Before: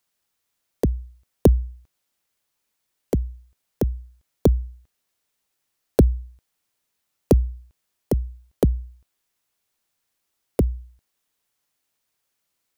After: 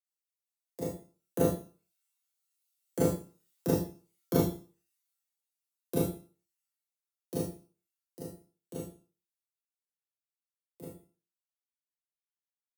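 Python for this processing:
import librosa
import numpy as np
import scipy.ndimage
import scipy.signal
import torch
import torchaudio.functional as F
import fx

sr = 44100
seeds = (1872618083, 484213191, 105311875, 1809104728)

y = fx.doppler_pass(x, sr, speed_mps=20, closest_m=18.0, pass_at_s=3.33)
y = fx.dereverb_blind(y, sr, rt60_s=0.66)
y = fx.room_early_taps(y, sr, ms=(39, 61), db=(-3.5, -12.0))
y = 10.0 ** (-15.0 / 20.0) * np.tanh(y / 10.0 ** (-15.0 / 20.0))
y = scipy.signal.sosfilt(scipy.signal.butter(4, 100.0, 'highpass', fs=sr, output='sos'), y)
y = fx.high_shelf(y, sr, hz=4900.0, db=9.5)
y = fx.comb_fb(y, sr, f0_hz=170.0, decay_s=0.28, harmonics='all', damping=0.0, mix_pct=90)
y = fx.rev_schroeder(y, sr, rt60_s=0.42, comb_ms=25, drr_db=-6.0)
y = fx.band_widen(y, sr, depth_pct=40)
y = y * librosa.db_to_amplitude(2.0)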